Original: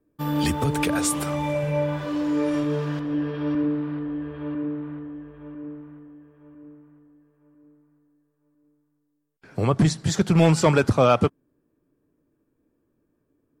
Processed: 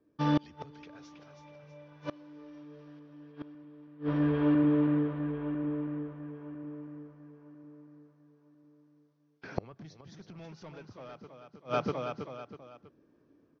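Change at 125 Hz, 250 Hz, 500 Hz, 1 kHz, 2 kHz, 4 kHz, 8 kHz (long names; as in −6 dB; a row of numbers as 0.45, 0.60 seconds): −12.5 dB, −7.0 dB, −12.5 dB, −12.0 dB, −13.5 dB, below −15 dB, below −30 dB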